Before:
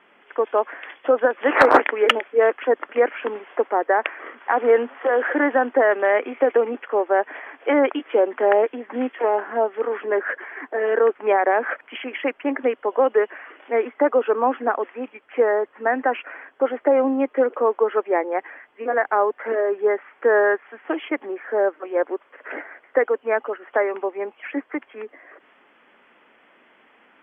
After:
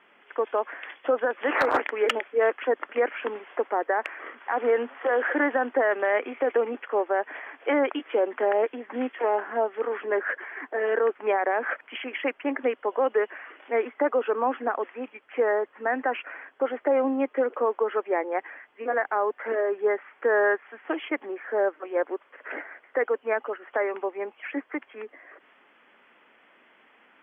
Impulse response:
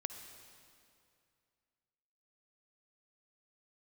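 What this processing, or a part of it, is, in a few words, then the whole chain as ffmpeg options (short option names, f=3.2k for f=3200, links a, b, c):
clipper into limiter: -af "equalizer=f=2.7k:w=0.36:g=3,asoftclip=type=hard:threshold=-3dB,alimiter=limit=-9.5dB:level=0:latency=1:release=59,volume=-5dB"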